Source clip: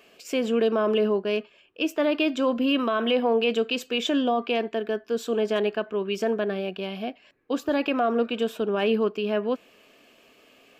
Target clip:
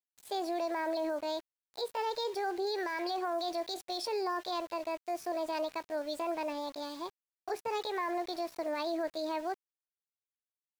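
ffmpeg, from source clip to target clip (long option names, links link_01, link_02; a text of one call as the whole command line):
ffmpeg -i in.wav -af "aresample=22050,aresample=44100,alimiter=limit=-18dB:level=0:latency=1:release=34,asetrate=66075,aresample=44100,atempo=0.66742,aeval=exprs='val(0)*gte(abs(val(0)),0.0106)':channel_layout=same,volume=-8.5dB" out.wav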